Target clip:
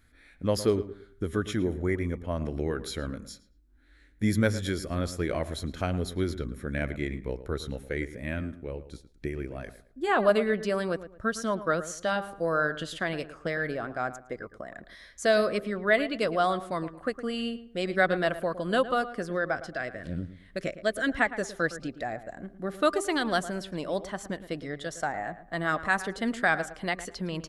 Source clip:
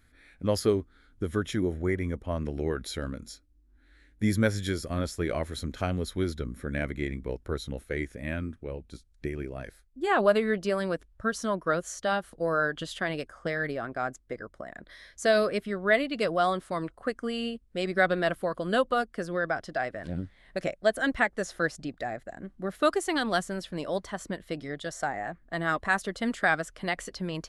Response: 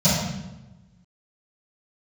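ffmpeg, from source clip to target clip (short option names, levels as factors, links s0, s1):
-filter_complex "[0:a]bandreject=f=396.6:t=h:w=4,bandreject=f=793.2:t=h:w=4,bandreject=f=1189.8:t=h:w=4,asettb=1/sr,asplit=3[s0][s1][s2];[s0]atrim=end=19.554[s3];[s1]atrim=start=19.55:end=21.09,asetpts=PTS-STARTPTS,afade=t=in:d=0.004:c=qsin,afade=t=out:st=1.536:d=0.004:c=qsin,equalizer=f=820:w=3.4:g=-13.5[s4];[s2]atrim=start=21.086[s5];[s3][s4]acrossfade=d=0.004:c1=hsin:c2=qsin[s6];[s6][s5]acrossfade=d=0.004:c1=qsin:c2=hsin,asplit=2[s7][s8];[s8]adelay=111,lowpass=f=2000:p=1,volume=0.224,asplit=2[s9][s10];[s10]adelay=111,lowpass=f=2000:p=1,volume=0.3,asplit=2[s11][s12];[s12]adelay=111,lowpass=f=2000:p=1,volume=0.3[s13];[s9][s11][s13]amix=inputs=3:normalize=0[s14];[s7][s14]amix=inputs=2:normalize=0"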